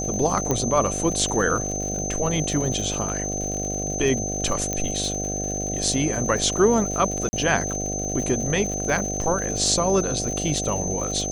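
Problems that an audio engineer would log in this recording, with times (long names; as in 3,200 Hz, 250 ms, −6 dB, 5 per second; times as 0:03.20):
mains buzz 50 Hz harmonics 15 −30 dBFS
surface crackle 94 per second −30 dBFS
whistle 6,200 Hz −28 dBFS
0:00.51: click −9 dBFS
0:04.73: click −11 dBFS
0:07.29–0:07.33: drop-out 40 ms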